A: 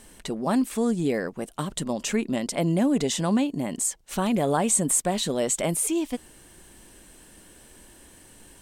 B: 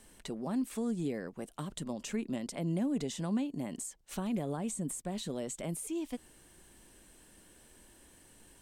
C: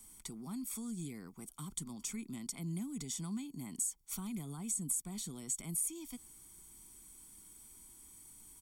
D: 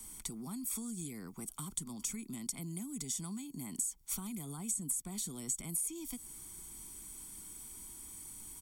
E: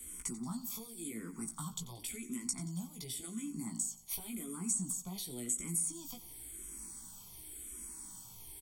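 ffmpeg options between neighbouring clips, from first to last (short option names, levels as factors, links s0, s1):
-filter_complex "[0:a]acrossover=split=330[s0][s1];[s1]acompressor=threshold=0.0282:ratio=5[s2];[s0][s2]amix=inputs=2:normalize=0,volume=0.376"
-filter_complex "[0:a]aecho=1:1:0.9:0.82,acrossover=split=240|1400|3800[s0][s1][s2][s3];[s1]alimiter=level_in=5.31:limit=0.0631:level=0:latency=1,volume=0.188[s4];[s3]crystalizer=i=3:c=0[s5];[s0][s4][s2][s5]amix=inputs=4:normalize=0,volume=0.376"
-filter_complex "[0:a]acrossover=split=240|6300[s0][s1][s2];[s0]acompressor=threshold=0.00178:ratio=4[s3];[s1]acompressor=threshold=0.00178:ratio=4[s4];[s2]acompressor=threshold=0.00708:ratio=4[s5];[s3][s4][s5]amix=inputs=3:normalize=0,volume=2.37"
-filter_complex "[0:a]flanger=delay=16:depth=2:speed=0.39,aecho=1:1:90|180|270|360|450|540:0.168|0.099|0.0584|0.0345|0.0203|0.012,asplit=2[s0][s1];[s1]afreqshift=-0.92[s2];[s0][s2]amix=inputs=2:normalize=1,volume=2.11"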